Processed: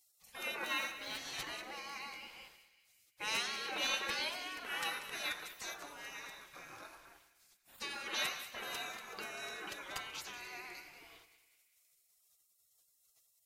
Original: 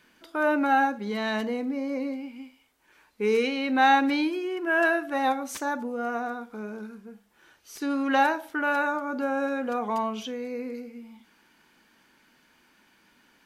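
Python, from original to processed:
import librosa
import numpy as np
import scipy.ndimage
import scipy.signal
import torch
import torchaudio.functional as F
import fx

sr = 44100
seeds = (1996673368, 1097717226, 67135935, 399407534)

y = fx.median_filter(x, sr, points=5, at=(0.63, 1.18))
y = fx.spec_gate(y, sr, threshold_db=-25, keep='weak')
y = fx.echo_split(y, sr, split_hz=1700.0, low_ms=103, high_ms=189, feedback_pct=52, wet_db=-12.5)
y = F.gain(torch.from_numpy(y), 5.0).numpy()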